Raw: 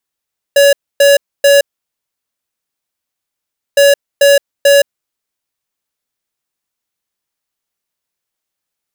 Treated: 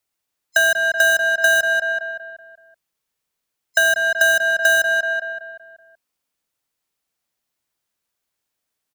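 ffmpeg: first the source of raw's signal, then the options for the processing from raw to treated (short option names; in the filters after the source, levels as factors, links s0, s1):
-f lavfi -i "aevalsrc='0.473*(2*lt(mod(564*t,1),0.5)-1)*clip(min(mod(mod(t,3.21),0.44),0.17-mod(mod(t,3.21),0.44))/0.005,0,1)*lt(mod(t,3.21),1.32)':d=6.42:s=44100"
-filter_complex "[0:a]afftfilt=real='real(if(lt(b,960),b+48*(1-2*mod(floor(b/48),2)),b),0)':imag='imag(if(lt(b,960),b+48*(1-2*mod(floor(b/48),2)),b),0)':win_size=2048:overlap=0.75,asplit=2[s0][s1];[s1]adelay=189,lowpass=f=2100:p=1,volume=0.562,asplit=2[s2][s3];[s3]adelay=189,lowpass=f=2100:p=1,volume=0.51,asplit=2[s4][s5];[s5]adelay=189,lowpass=f=2100:p=1,volume=0.51,asplit=2[s6][s7];[s7]adelay=189,lowpass=f=2100:p=1,volume=0.51,asplit=2[s8][s9];[s9]adelay=189,lowpass=f=2100:p=1,volume=0.51,asplit=2[s10][s11];[s11]adelay=189,lowpass=f=2100:p=1,volume=0.51[s12];[s2][s4][s6][s8][s10][s12]amix=inputs=6:normalize=0[s13];[s0][s13]amix=inputs=2:normalize=0,acrossover=split=410[s14][s15];[s15]acompressor=threshold=0.158:ratio=3[s16];[s14][s16]amix=inputs=2:normalize=0"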